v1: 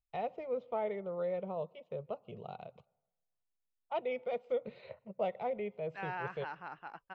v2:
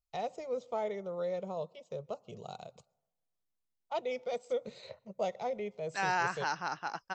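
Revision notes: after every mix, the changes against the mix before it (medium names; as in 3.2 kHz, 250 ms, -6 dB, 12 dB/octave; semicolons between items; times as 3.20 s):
second voice +8.5 dB; master: remove Chebyshev low-pass 2.8 kHz, order 3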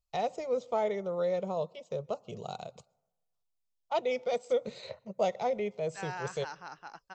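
first voice +5.0 dB; second voice -9.0 dB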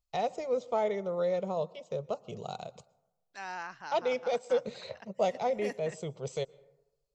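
first voice: send +6.0 dB; second voice: entry -2.60 s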